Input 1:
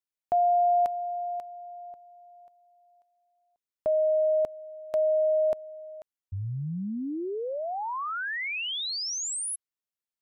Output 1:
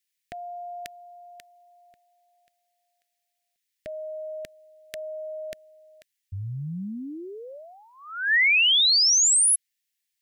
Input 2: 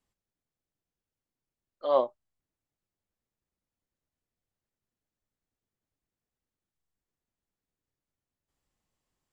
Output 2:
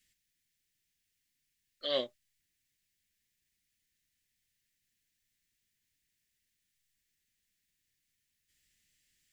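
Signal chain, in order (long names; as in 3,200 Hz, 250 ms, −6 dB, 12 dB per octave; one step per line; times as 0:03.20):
drawn EQ curve 190 Hz 0 dB, 570 Hz −9 dB, 980 Hz −24 dB, 1,800 Hz +13 dB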